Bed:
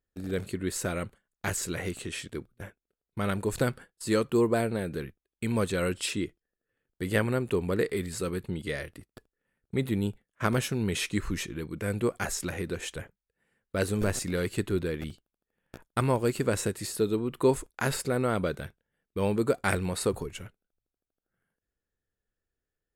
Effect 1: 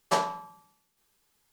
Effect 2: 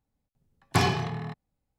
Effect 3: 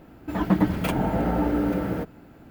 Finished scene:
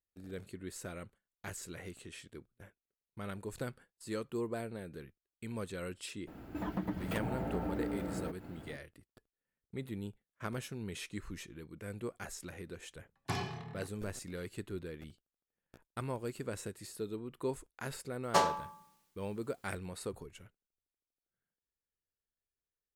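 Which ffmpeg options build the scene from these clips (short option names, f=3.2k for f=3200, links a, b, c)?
-filter_complex "[0:a]volume=-13dB[a];[3:a]acompressor=threshold=-38dB:ratio=2.5:attack=9.4:release=336:knee=1:detection=peak,atrim=end=2.5,asetpts=PTS-STARTPTS,volume=-2dB,afade=t=in:d=0.004:c=hsin,afade=t=out:st=2.496:d=0.004:c=hsin,adelay=6270[b];[2:a]atrim=end=1.78,asetpts=PTS-STARTPTS,volume=-13.5dB,afade=t=in:d=0.004:c=hsin,afade=t=out:st=1.776:d=0.004:c=hsin,adelay=12540[c];[1:a]atrim=end=1.52,asetpts=PTS-STARTPTS,volume=-2dB,afade=t=in:d=0.004:c=hsin,afade=t=out:st=1.516:d=0.004:c=hsin,adelay=18230[d];[a][b][c][d]amix=inputs=4:normalize=0"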